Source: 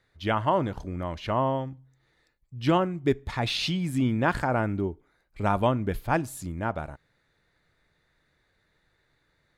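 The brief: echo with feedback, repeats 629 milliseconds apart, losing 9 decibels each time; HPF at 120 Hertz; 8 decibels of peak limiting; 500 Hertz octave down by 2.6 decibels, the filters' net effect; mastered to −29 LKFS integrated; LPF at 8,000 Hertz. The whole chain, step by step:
high-pass filter 120 Hz
low-pass filter 8,000 Hz
parametric band 500 Hz −3.5 dB
brickwall limiter −18.5 dBFS
repeating echo 629 ms, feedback 35%, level −9 dB
level +2.5 dB

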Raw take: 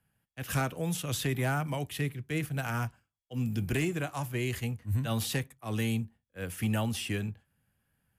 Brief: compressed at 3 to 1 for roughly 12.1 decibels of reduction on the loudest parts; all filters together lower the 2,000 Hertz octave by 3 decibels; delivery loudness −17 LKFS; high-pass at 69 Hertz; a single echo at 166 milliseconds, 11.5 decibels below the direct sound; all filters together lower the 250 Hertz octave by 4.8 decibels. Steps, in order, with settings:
high-pass filter 69 Hz
parametric band 250 Hz −6.5 dB
parametric band 2,000 Hz −4 dB
downward compressor 3 to 1, threshold −45 dBFS
single-tap delay 166 ms −11.5 dB
level +28 dB

